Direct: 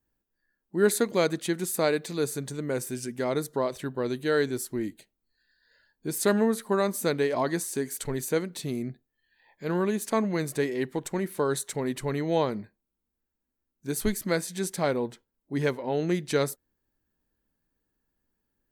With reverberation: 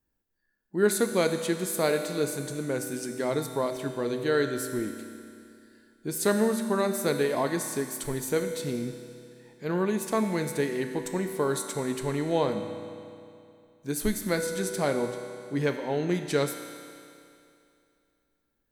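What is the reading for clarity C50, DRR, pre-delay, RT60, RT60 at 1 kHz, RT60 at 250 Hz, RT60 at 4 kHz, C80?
6.5 dB, 5.5 dB, 8 ms, 2.6 s, 2.6 s, 2.6 s, 2.5 s, 7.5 dB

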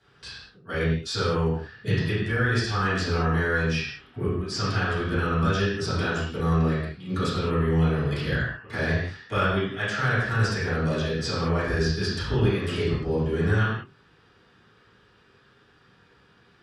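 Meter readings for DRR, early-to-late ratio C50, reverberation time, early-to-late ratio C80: −13.0 dB, 0.0 dB, non-exponential decay, 3.0 dB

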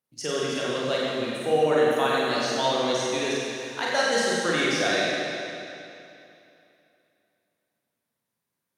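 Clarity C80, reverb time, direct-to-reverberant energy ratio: −2.5 dB, 2.8 s, −6.5 dB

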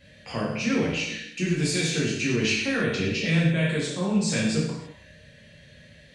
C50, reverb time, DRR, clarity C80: 1.0 dB, non-exponential decay, −6.5 dB, 4.0 dB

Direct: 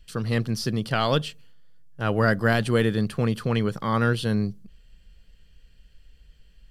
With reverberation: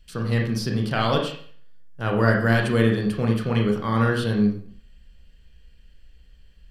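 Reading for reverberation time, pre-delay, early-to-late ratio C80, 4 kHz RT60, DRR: 0.50 s, 28 ms, 8.5 dB, 0.50 s, 0.0 dB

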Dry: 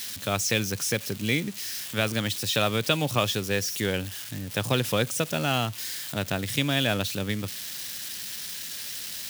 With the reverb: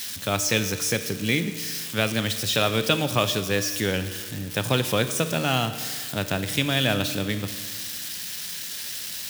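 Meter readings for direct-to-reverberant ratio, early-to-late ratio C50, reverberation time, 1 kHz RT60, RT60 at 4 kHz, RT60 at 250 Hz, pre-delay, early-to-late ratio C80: 9.0 dB, 10.5 dB, 1.7 s, 1.7 s, 1.6 s, 1.7 s, 7 ms, 11.5 dB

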